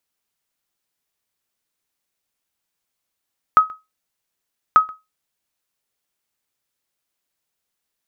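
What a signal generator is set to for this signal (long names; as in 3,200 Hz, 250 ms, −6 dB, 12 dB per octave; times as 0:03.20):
ping with an echo 1,270 Hz, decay 0.21 s, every 1.19 s, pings 2, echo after 0.13 s, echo −25 dB −3 dBFS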